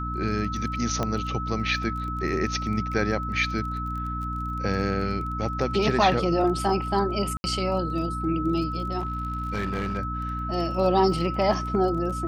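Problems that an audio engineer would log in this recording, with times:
surface crackle 19 per second −34 dBFS
mains hum 60 Hz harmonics 5 −32 dBFS
whistle 1,300 Hz −31 dBFS
0:01.03: click −13 dBFS
0:07.37–0:07.44: drop-out 70 ms
0:08.99–0:09.99: clipping −23.5 dBFS

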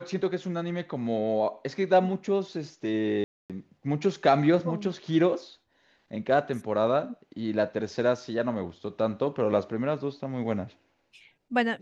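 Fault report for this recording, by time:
0:03.24–0:03.50: drop-out 257 ms

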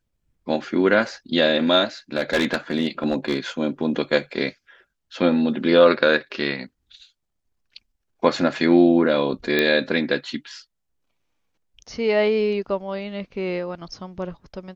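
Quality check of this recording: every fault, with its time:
0:02.16–0:03.38: clipping −14.5 dBFS
0:09.59: click −7 dBFS

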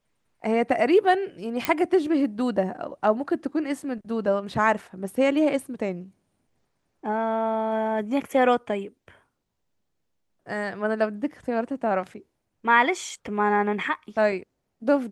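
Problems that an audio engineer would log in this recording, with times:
0:01.65: click −7 dBFS

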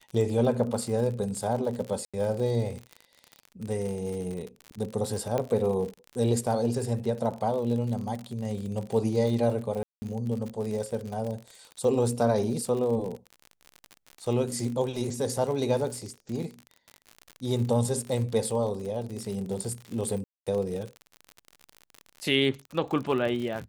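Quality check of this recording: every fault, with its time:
surface crackle 57 per second −33 dBFS
0:02.05–0:02.14: drop-out 86 ms
0:05.38: click −16 dBFS
0:09.83–0:10.02: drop-out 190 ms
0:20.24–0:20.47: drop-out 226 ms

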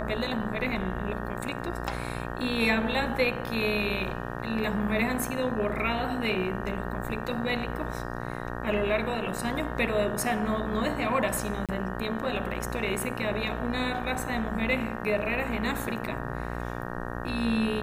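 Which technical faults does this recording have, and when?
mains buzz 60 Hz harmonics 31 −35 dBFS
0:11.66–0:11.69: drop-out 27 ms

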